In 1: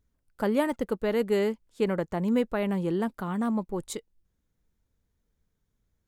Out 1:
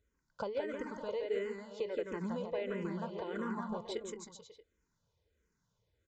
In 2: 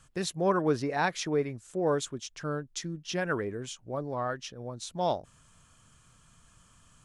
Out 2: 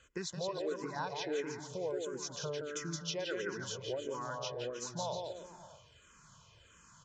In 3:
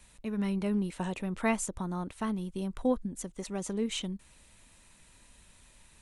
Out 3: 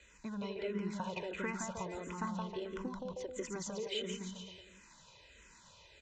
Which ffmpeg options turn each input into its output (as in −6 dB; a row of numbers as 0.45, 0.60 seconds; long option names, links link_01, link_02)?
-filter_complex "[0:a]highpass=frequency=160:poles=1,aecho=1:1:2:0.47,acompressor=threshold=-37dB:ratio=6,aecho=1:1:170|314.5|437.3|541.7|630.5:0.631|0.398|0.251|0.158|0.1,aresample=16000,aresample=44100,asplit=2[link_01][link_02];[link_02]afreqshift=-1.5[link_03];[link_01][link_03]amix=inputs=2:normalize=1,volume=2.5dB"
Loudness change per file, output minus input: −11.0, −7.5, −7.5 LU